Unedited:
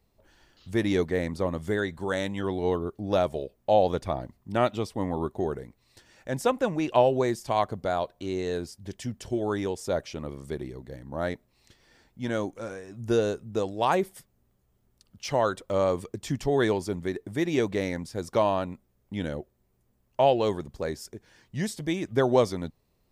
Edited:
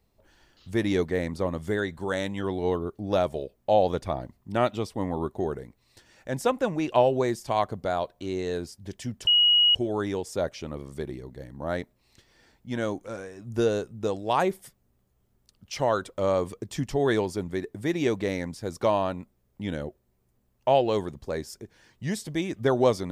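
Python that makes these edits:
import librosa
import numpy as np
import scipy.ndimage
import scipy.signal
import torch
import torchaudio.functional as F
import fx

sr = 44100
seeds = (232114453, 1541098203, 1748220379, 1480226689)

y = fx.edit(x, sr, fx.insert_tone(at_s=9.27, length_s=0.48, hz=2900.0, db=-16.0), tone=tone)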